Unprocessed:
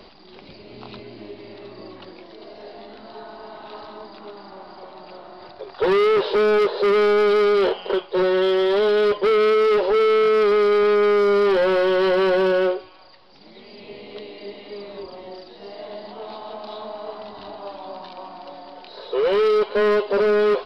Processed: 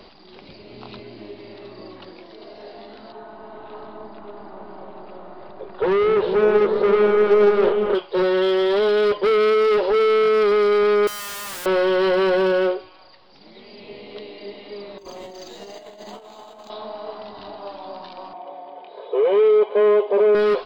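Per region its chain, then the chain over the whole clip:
3.12–7.95 s: distance through air 330 m + delay with an opening low-pass 202 ms, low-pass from 200 Hz, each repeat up 1 oct, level 0 dB + loudspeaker Doppler distortion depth 0.16 ms
11.07–11.66 s: low-pass 3.5 kHz 24 dB/octave + bass shelf 200 Hz +5.5 dB + integer overflow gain 27.5 dB
14.98–16.70 s: treble shelf 3.5 kHz +9.5 dB + compressor with a negative ratio -38 dBFS, ratio -0.5 + decimation joined by straight lines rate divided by 4×
18.33–20.35 s: cabinet simulation 240–2900 Hz, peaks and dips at 260 Hz -5 dB, 420 Hz +4 dB, 710 Hz +4 dB, 1.8 kHz -8 dB + comb of notches 1.4 kHz
whole clip: none

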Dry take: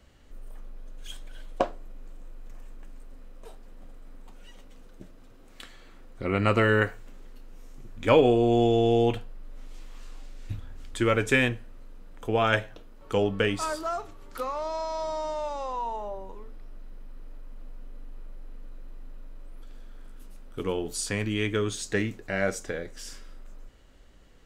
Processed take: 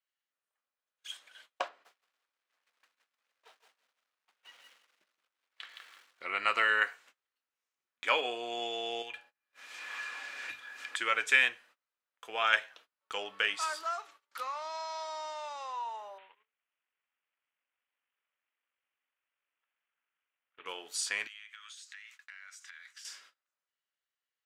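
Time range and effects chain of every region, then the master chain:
1.68–6.22 s: low-pass 4 kHz + bit-crushed delay 168 ms, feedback 35%, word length 9-bit, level -3.5 dB
9.02–10.96 s: de-hum 83.54 Hz, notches 10 + small resonant body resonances 1.7/2.4 kHz, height 16 dB, ringing for 55 ms + three bands compressed up and down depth 100%
16.18–20.66 s: CVSD coder 16 kbps + three bands compressed up and down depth 40%
21.27–23.05 s: high-pass 1.2 kHz 24 dB/octave + compression 20:1, threshold -45 dBFS
whole clip: high-pass 1.4 kHz 12 dB/octave; gate -58 dBFS, range -27 dB; treble shelf 8.3 kHz -11 dB; trim +2 dB

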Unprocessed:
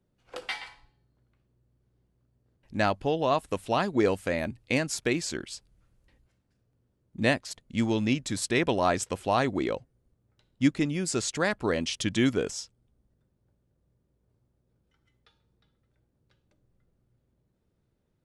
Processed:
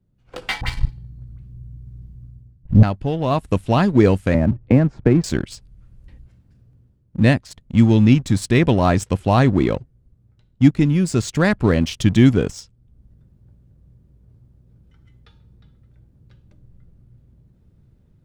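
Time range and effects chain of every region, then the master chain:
0.61–2.83 s: tone controls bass +14 dB, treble +6 dB + waveshaping leveller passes 1 + phase dispersion highs, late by 60 ms, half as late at 1.2 kHz
4.34–5.24 s: low-pass 1.1 kHz + three bands compressed up and down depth 70%
whole clip: tone controls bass +14 dB, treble -3 dB; waveshaping leveller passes 1; level rider; trim -1 dB

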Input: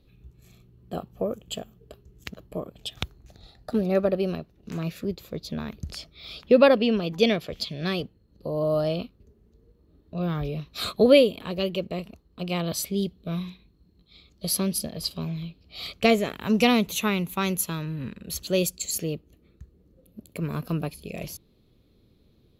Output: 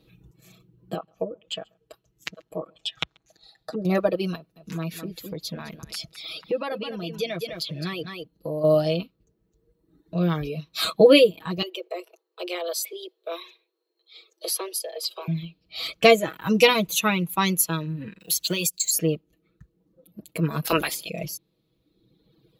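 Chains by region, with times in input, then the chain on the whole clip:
0.94–3.85 s: low-pass that closes with the level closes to 530 Hz, closed at -23.5 dBFS + bass shelf 480 Hz -10 dB + delay 135 ms -19.5 dB
4.35–8.64 s: peaking EQ 11 kHz +8 dB 0.21 oct + delay 208 ms -9 dB + compression 3:1, threshold -32 dBFS
11.62–15.28 s: steep high-pass 360 Hz 96 dB/octave + bass shelf 460 Hz +7.5 dB + compression 2:1, threshold -33 dBFS
18.20–18.95 s: companding laws mixed up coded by A + treble shelf 2.4 kHz +11.5 dB + compression 16:1, threshold -24 dBFS
20.64–21.08 s: spectral peaks clipped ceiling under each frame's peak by 25 dB + decay stretcher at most 85 dB/s
whole clip: high-pass 150 Hz 6 dB/octave; reverb removal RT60 1.5 s; comb 6.2 ms, depth 83%; trim +3.5 dB

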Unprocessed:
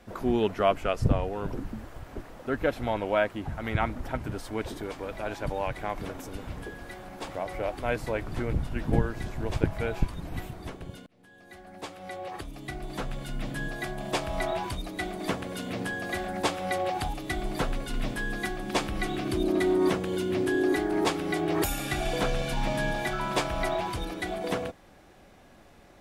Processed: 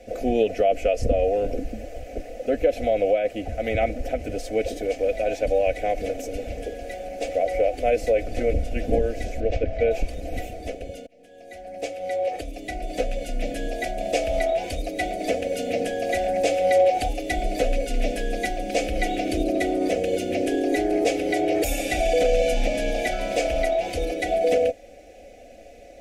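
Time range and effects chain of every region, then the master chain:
9.40–9.91 s: distance through air 160 m + band-stop 930 Hz, Q 5.1
whole clip: FFT filter 110 Hz 0 dB, 160 Hz -11 dB, 660 Hz +13 dB, 970 Hz -26 dB, 2.4 kHz +5 dB, 3.6 kHz -4 dB, 6.3 kHz +4 dB, 9 kHz -1 dB, 15 kHz -4 dB; peak limiter -16.5 dBFS; comb 4 ms, depth 65%; trim +3.5 dB

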